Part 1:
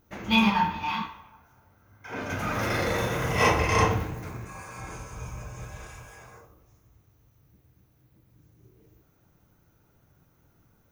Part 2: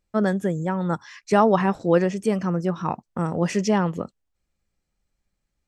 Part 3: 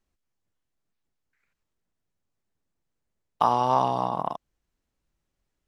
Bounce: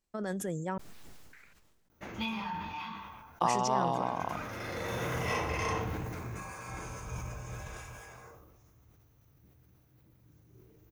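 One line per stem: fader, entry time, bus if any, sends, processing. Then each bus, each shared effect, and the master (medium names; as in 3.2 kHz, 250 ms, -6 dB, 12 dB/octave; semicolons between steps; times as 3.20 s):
-2.5 dB, 1.90 s, no send, hum notches 50/100/150/200 Hz; compression 5:1, threshold -28 dBFS, peak gain reduction 11 dB; auto duck -10 dB, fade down 1.70 s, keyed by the third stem
-11.5 dB, 0.00 s, muted 0.78–3.41 s, no send, tone controls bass -5 dB, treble +6 dB; compressor with a negative ratio -24 dBFS, ratio -1
-8.0 dB, 0.00 s, no send, none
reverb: none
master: decay stretcher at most 32 dB/s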